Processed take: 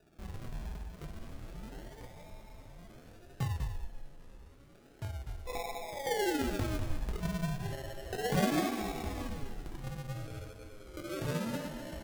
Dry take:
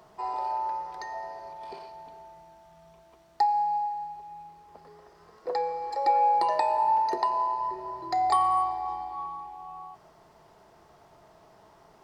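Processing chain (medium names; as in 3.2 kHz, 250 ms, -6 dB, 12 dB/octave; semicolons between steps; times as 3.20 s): chorus voices 4, 0.85 Hz, delay 22 ms, depth 4.2 ms; RIAA curve recording; feedback comb 57 Hz, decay 1.7 s, harmonics all, mix 80%; decimation with a swept rate 41×, swing 60% 0.31 Hz; on a send: delay 197 ms -8.5 dB; on the sum: ever faster or slower copies 731 ms, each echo -4 st, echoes 3, each echo -6 dB; trim +6 dB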